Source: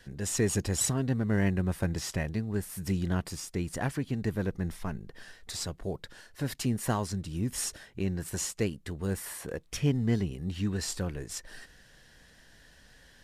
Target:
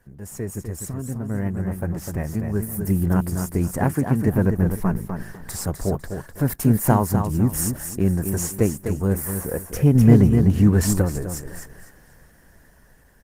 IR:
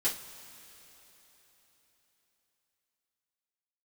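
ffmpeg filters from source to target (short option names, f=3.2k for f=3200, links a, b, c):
-filter_complex "[0:a]firequalizer=gain_entry='entry(180,0);entry(340,-2);entry(920,0);entry(3600,-19);entry(5400,-10);entry(13000,7)':delay=0.05:min_phase=1,aecho=1:1:252|504|756:0.447|0.116|0.0302,dynaudnorm=f=540:g=9:m=15.5dB,asettb=1/sr,asplit=3[a][b][c];[a]atrim=end=0.504[d];[b]atrim=start=0.5:end=1.12,asetpts=PTS-STARTPTS,afade=t=in:d=0.004:c=qsin,afade=t=out:st=0.616:d=0.004:c=qsin,equalizer=f=820:t=o:w=0.42:g=-6[e];[c]atrim=start=1.116[f];[d][e]acrossfade=d=0.004:c1=hsin:c2=qsin[g];[g][f]acrossfade=d=0.004:c1=qsin:c2=hsin,asettb=1/sr,asplit=3[h][i][j];[h]atrim=end=3.844[k];[i]atrim=start=3.84:end=4.28,asetpts=PTS-STARTPTS,afade=t=in:d=0.004:c=qsin,afade=t=out:st=0.436:d=0.004:c=qsin,highpass=100[l];[j]atrim=start=4.276[m];[k][l]acrossfade=d=0.004:c1=hsin:c2=qsin[n];[n][m]acrossfade=d=0.004:c1=qsin:c2=hsin,asettb=1/sr,asplit=3[o][p][q];[o]atrim=end=9.954[r];[p]atrim=start=9.95:end=11.02,asetpts=PTS-STARTPTS,afade=t=in:d=0.004:c=qsin,afade=t=out:st=1.066:d=0.004:c=qsin,acontrast=33[s];[q]atrim=start=11.016[t];[r][s]acrossfade=d=0.004:c1=hsin:c2=qsin[u];[u][t]acrossfade=d=0.004:c1=qsin:c2=hsin,volume=-1dB" -ar 48000 -c:a libopus -b:a 16k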